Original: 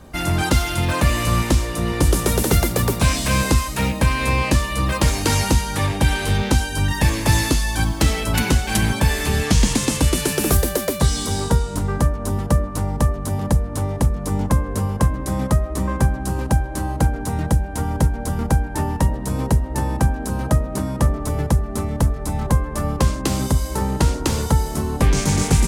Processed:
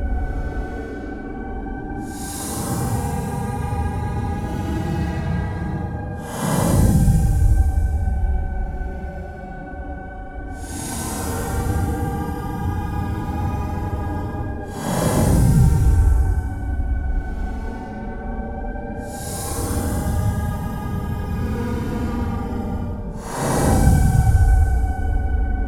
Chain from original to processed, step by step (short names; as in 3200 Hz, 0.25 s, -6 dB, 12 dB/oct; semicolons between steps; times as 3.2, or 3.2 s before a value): wow and flutter 79 cents; Paulstretch 17×, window 0.05 s, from 17.12; gain -1 dB